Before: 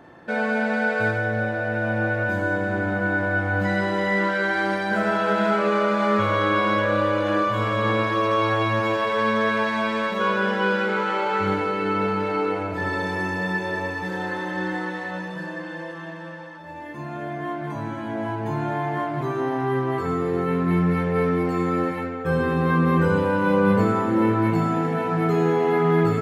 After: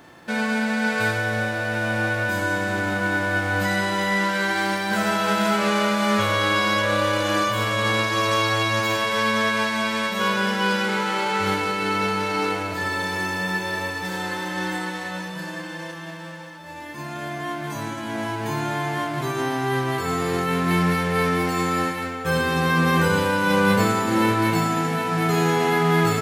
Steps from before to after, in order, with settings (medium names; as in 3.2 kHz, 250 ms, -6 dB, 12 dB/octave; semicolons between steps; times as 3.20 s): formants flattened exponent 0.6